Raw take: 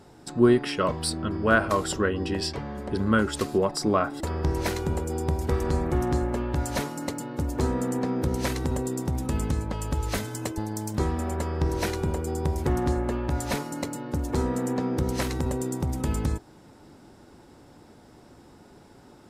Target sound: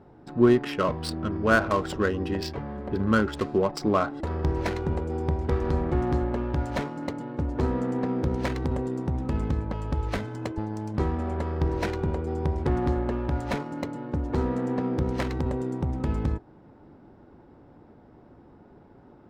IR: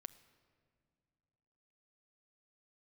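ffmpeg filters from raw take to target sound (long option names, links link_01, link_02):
-af "adynamicsmooth=sensitivity=3.5:basefreq=1600"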